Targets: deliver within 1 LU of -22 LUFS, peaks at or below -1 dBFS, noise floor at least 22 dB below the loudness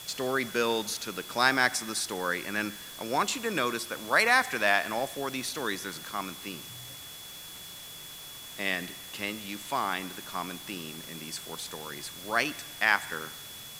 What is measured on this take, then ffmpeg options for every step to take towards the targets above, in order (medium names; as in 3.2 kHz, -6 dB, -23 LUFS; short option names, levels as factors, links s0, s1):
steady tone 3.4 kHz; tone level -46 dBFS; noise floor -44 dBFS; noise floor target -52 dBFS; loudness -30.0 LUFS; peak level -8.0 dBFS; loudness target -22.0 LUFS
-> -af "bandreject=f=3400:w=30"
-af "afftdn=nr=8:nf=-44"
-af "volume=2.51,alimiter=limit=0.891:level=0:latency=1"